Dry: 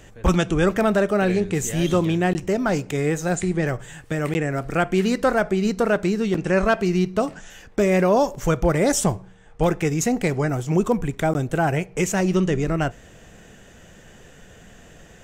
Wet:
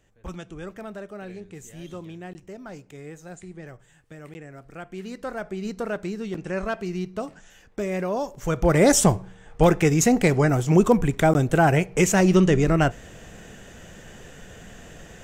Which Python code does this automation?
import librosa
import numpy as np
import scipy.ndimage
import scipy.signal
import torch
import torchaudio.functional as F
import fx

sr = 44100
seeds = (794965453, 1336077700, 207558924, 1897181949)

y = fx.gain(x, sr, db=fx.line((4.78, -18.0), (5.7, -9.0), (8.34, -9.0), (8.79, 3.0)))